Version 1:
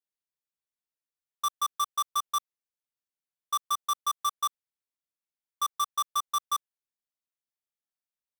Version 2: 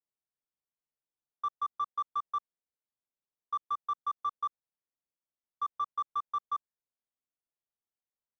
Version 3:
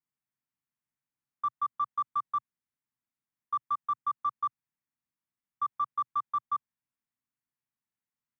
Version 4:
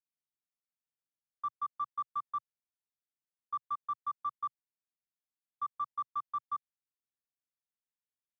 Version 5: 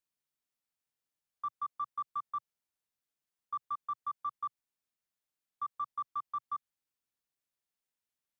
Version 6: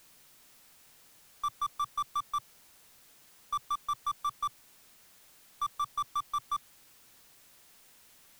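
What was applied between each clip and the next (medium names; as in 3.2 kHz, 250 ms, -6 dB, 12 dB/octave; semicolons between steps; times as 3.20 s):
low-pass 1.1 kHz 12 dB/octave
graphic EQ 125/250/500/1000/2000/4000 Hz +11/+10/-10/+6/+7/-6 dB; trim -3 dB
upward expansion 1.5:1, over -42 dBFS; trim -5 dB
peak limiter -33.5 dBFS, peak gain reduction 5 dB; trim +3.5 dB
partial rectifier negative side -3 dB; power-law waveshaper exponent 0.5; trim +3.5 dB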